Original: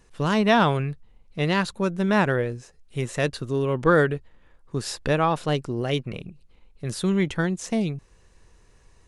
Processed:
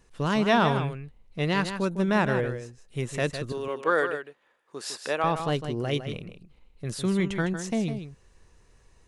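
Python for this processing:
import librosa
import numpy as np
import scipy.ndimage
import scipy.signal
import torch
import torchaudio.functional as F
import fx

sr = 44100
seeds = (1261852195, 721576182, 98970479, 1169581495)

p1 = fx.highpass(x, sr, hz=470.0, slope=12, at=(3.52, 5.24))
p2 = p1 + fx.echo_single(p1, sr, ms=156, db=-9.0, dry=0)
y = p2 * 10.0 ** (-3.0 / 20.0)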